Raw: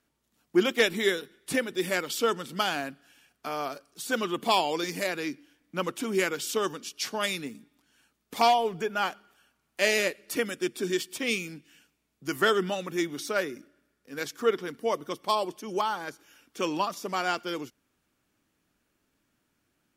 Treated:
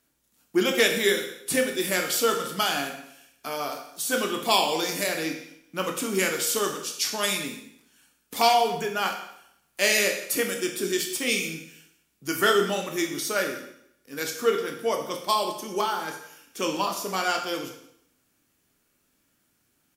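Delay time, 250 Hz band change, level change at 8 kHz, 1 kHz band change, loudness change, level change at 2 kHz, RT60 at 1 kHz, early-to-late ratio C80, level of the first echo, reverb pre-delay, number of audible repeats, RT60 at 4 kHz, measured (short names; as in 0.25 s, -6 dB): 0.173 s, +1.5 dB, +9.0 dB, +2.5 dB, +3.5 dB, +3.0 dB, 0.70 s, 9.5 dB, -18.0 dB, 15 ms, 1, 0.70 s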